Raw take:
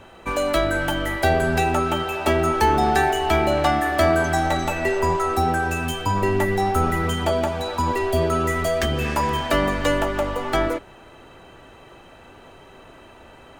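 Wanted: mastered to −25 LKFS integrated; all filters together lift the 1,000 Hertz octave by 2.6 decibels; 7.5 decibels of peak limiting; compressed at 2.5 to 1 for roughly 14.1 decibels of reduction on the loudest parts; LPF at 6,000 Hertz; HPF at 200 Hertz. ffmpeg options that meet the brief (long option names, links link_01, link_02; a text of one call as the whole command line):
ffmpeg -i in.wav -af "highpass=200,lowpass=6000,equalizer=frequency=1000:width_type=o:gain=3.5,acompressor=threshold=-35dB:ratio=2.5,volume=8.5dB,alimiter=limit=-16.5dB:level=0:latency=1" out.wav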